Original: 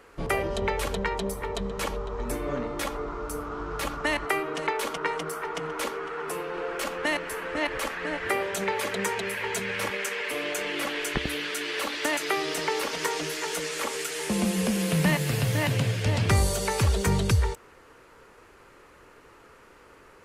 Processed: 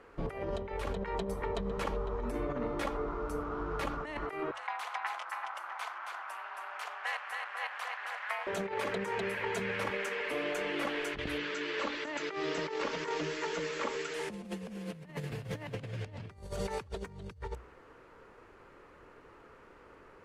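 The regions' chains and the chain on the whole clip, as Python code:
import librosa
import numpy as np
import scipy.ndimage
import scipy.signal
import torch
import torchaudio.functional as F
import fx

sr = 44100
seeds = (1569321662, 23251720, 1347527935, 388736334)

y = fx.chain(x, sr, fx.steep_highpass(hz=730.0, slope=48),
    fx.ring_mod(carrier_hz=110.0),
    fx.echo_single(ms=272, db=-4.0), at=(4.51, 8.47))
y = fx.chain(y, sr, fx.brickwall_lowpass(high_hz=7900.0),
    fx.notch(hz=740.0, q=6.5), at=(11.38, 14.14))
y = fx.lowpass(y, sr, hz=1800.0, slope=6)
y = fx.hum_notches(y, sr, base_hz=60, count=2)
y = fx.over_compress(y, sr, threshold_db=-31.0, ratio=-0.5)
y = y * librosa.db_to_amplitude(-4.5)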